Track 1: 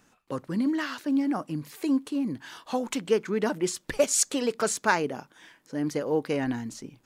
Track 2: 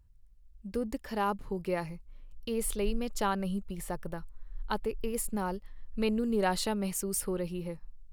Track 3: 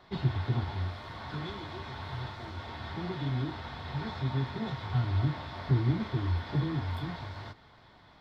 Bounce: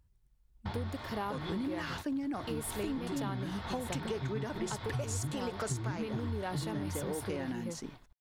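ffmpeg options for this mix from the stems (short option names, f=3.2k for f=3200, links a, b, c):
-filter_complex "[0:a]adelay=1000,volume=-1.5dB[a];[1:a]volume=-0.5dB,asplit=2[b][c];[2:a]volume=1.5dB[d];[c]apad=whole_len=361758[e];[d][e]sidechaingate=range=-56dB:threshold=-44dB:ratio=16:detection=peak[f];[a][b]amix=inputs=2:normalize=0,highpass=f=78:p=1,alimiter=limit=-19dB:level=0:latency=1:release=86,volume=0dB[g];[f][g]amix=inputs=2:normalize=0,acompressor=threshold=-33dB:ratio=6"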